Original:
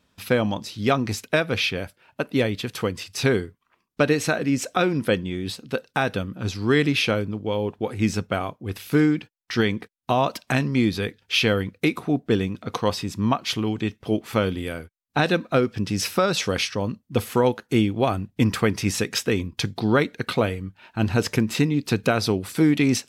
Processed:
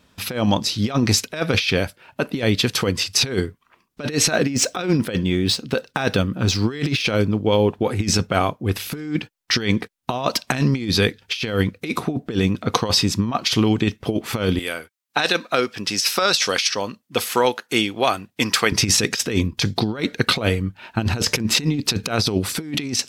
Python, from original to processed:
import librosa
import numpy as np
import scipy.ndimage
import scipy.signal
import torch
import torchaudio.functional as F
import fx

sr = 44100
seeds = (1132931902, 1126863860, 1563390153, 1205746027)

y = fx.median_filter(x, sr, points=3, at=(4.29, 7.06))
y = fx.highpass(y, sr, hz=1000.0, slope=6, at=(14.59, 18.72))
y = fx.dynamic_eq(y, sr, hz=5100.0, q=1.1, threshold_db=-43.0, ratio=4.0, max_db=7)
y = fx.over_compress(y, sr, threshold_db=-24.0, ratio=-0.5)
y = F.gain(torch.from_numpy(y), 5.5).numpy()